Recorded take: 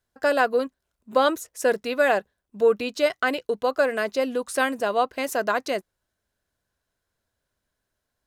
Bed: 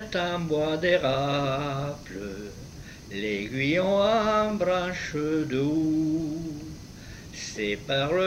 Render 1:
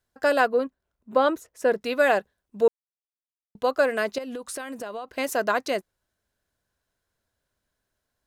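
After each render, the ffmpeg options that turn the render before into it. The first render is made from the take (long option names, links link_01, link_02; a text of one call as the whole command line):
ffmpeg -i in.wav -filter_complex "[0:a]asettb=1/sr,asplit=3[link_01][link_02][link_03];[link_01]atrim=end=0.474[link_04];[link_02]atrim=start=0.47:end=1.81,asetpts=PTS-STARTPTS,afade=type=in:duration=0.004:curve=qsin,afade=type=out:start_time=1.336:duration=0.004:curve=qsin,equalizer=frequency=11000:width_type=o:width=2.9:gain=-11[link_05];[link_03]atrim=start=1.806[link_06];[link_04][link_05]acrossfade=duration=0.004:curve1=hsin:curve2=qsin[link_07];[link_07][link_06]acrossfade=duration=0.004:curve1=qsin:curve2=hsin,asettb=1/sr,asplit=3[link_08][link_09][link_10];[link_08]atrim=end=4.184[link_11];[link_09]atrim=start=4.18:end=5.08,asetpts=PTS-STARTPTS,afade=type=in:duration=0.004:curve=qsin,afade=type=out:start_time=0.896:duration=0.004:curve=qsin,acompressor=threshold=-30dB:ratio=16:attack=3.2:release=140:knee=1:detection=peak[link_12];[link_10]atrim=start=5.076[link_13];[link_11][link_12]acrossfade=duration=0.004:curve1=hsin:curve2=qsin[link_14];[link_14][link_13]acrossfade=duration=0.004:curve1=qsin:curve2=hsin,asplit=3[link_15][link_16][link_17];[link_15]atrim=end=2.68,asetpts=PTS-STARTPTS,afade=type=out:start_time=2.676:duration=0.004:curve=hsin[link_18];[link_16]atrim=start=2.68:end=3.55,asetpts=PTS-STARTPTS,volume=0[link_19];[link_17]atrim=start=3.55,asetpts=PTS-STARTPTS,afade=type=in:duration=0.004:curve=hsin[link_20];[link_18][link_19][link_20]concat=n=3:v=0:a=1" out.wav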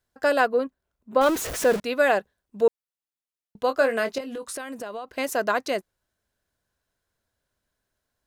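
ffmpeg -i in.wav -filter_complex "[0:a]asettb=1/sr,asplit=3[link_01][link_02][link_03];[link_01]atrim=end=1.214[link_04];[link_02]atrim=start=1.21:end=1.8,asetpts=PTS-STARTPTS,afade=type=in:duration=0.004:curve=qsin,afade=type=out:start_time=0.586:duration=0.004:curve=qsin,aeval=exprs='val(0)+0.5*0.0531*sgn(val(0))':channel_layout=same[link_05];[link_03]atrim=start=1.796[link_06];[link_04][link_05]acrossfade=duration=0.004:curve1=hsin:curve2=qsin[link_07];[link_07][link_06]acrossfade=duration=0.004:curve1=qsin:curve2=hsin,asettb=1/sr,asplit=3[link_08][link_09][link_10];[link_08]atrim=end=3.674[link_11];[link_09]atrim=start=3.67:end=4.57,asetpts=PTS-STARTPTS,afade=type=in:duration=0.004:curve=qsin,afade=type=out:start_time=0.896:duration=0.004:curve=qsin,asplit=2[link_12][link_13];[link_13]adelay=22,volume=-8.5dB[link_14];[link_12][link_14]amix=inputs=2:normalize=0,atrim=end_sample=39690[link_15];[link_10]atrim=start=4.566[link_16];[link_11][link_15]acrossfade=duration=0.004:curve1=hsin:curve2=qsin[link_17];[link_17][link_16]acrossfade=duration=0.004:curve1=qsin:curve2=hsin" out.wav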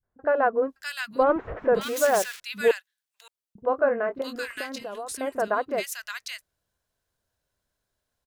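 ffmpeg -i in.wav -filter_complex "[0:a]acrossover=split=270|1700[link_01][link_02][link_03];[link_02]adelay=30[link_04];[link_03]adelay=600[link_05];[link_01][link_04][link_05]amix=inputs=3:normalize=0" out.wav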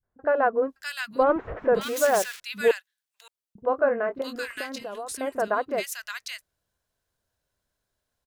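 ffmpeg -i in.wav -af anull out.wav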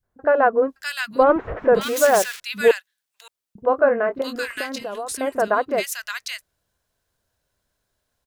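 ffmpeg -i in.wav -af "volume=5.5dB" out.wav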